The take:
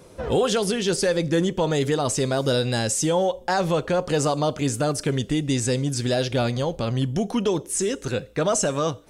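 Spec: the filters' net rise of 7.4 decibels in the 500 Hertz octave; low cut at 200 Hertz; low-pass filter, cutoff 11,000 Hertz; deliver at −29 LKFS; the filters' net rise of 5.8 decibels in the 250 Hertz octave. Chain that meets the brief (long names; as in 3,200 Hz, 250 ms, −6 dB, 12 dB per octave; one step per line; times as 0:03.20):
high-pass filter 200 Hz
low-pass filter 11,000 Hz
parametric band 250 Hz +7 dB
parametric band 500 Hz +7 dB
level −11 dB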